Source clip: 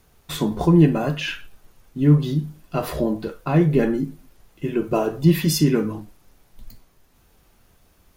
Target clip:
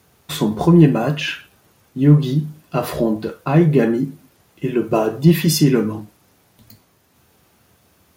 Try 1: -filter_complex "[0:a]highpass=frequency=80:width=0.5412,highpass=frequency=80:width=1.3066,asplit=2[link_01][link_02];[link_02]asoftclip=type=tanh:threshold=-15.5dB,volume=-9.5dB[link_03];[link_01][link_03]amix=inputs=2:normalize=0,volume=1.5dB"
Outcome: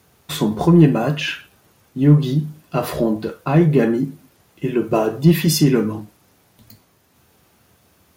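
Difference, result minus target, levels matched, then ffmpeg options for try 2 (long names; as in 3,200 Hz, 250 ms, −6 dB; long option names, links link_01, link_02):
soft clipping: distortion +7 dB
-filter_complex "[0:a]highpass=frequency=80:width=0.5412,highpass=frequency=80:width=1.3066,asplit=2[link_01][link_02];[link_02]asoftclip=type=tanh:threshold=-9dB,volume=-9.5dB[link_03];[link_01][link_03]amix=inputs=2:normalize=0,volume=1.5dB"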